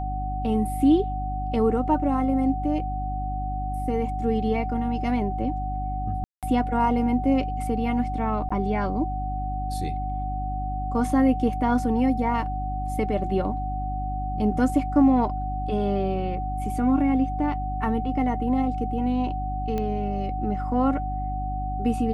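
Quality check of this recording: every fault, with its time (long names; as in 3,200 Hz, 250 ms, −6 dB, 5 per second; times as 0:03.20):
mains hum 50 Hz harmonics 6 −30 dBFS
whistle 750 Hz −30 dBFS
0:06.24–0:06.43: drop-out 187 ms
0:08.49–0:08.51: drop-out 15 ms
0:19.78: click −17 dBFS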